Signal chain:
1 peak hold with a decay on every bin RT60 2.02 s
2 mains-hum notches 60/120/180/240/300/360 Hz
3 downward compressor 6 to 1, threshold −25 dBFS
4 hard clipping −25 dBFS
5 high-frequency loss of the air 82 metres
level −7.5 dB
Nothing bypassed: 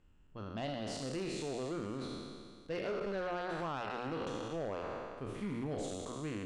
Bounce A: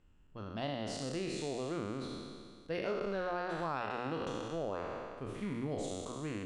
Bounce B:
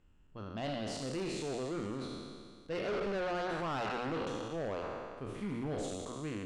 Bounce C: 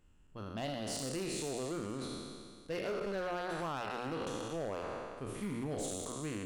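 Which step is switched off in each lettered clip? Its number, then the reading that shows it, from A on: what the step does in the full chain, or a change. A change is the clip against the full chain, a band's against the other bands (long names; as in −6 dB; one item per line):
4, distortion level −14 dB
3, average gain reduction 2.0 dB
5, 8 kHz band +7.5 dB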